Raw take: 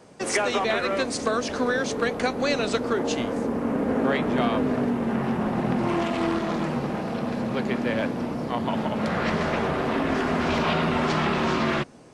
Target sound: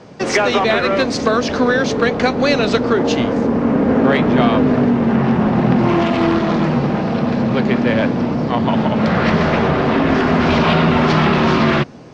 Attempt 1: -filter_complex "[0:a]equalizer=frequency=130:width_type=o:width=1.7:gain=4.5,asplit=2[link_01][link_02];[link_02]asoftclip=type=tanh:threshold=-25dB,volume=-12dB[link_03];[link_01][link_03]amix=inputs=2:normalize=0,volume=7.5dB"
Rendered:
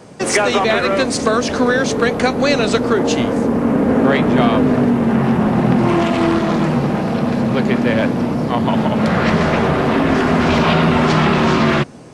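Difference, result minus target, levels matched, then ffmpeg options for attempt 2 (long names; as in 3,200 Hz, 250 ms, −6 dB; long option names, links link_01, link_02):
8,000 Hz band +6.0 dB
-filter_complex "[0:a]lowpass=frequency=5800:width=0.5412,lowpass=frequency=5800:width=1.3066,equalizer=frequency=130:width_type=o:width=1.7:gain=4.5,asplit=2[link_01][link_02];[link_02]asoftclip=type=tanh:threshold=-25dB,volume=-12dB[link_03];[link_01][link_03]amix=inputs=2:normalize=0,volume=7.5dB"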